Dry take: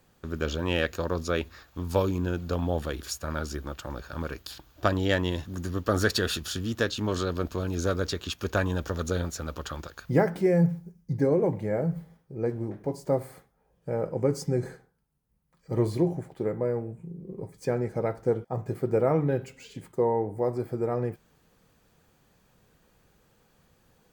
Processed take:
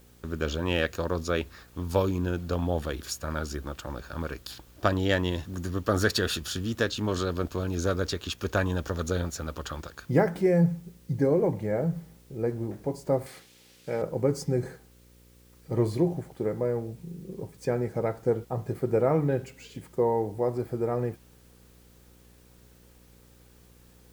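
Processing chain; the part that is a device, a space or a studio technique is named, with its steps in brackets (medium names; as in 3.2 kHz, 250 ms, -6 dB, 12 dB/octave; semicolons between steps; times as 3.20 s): video cassette with head-switching buzz (mains buzz 60 Hz, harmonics 9, -57 dBFS -5 dB/octave; white noise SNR 34 dB); 13.26–14.02 s: frequency weighting D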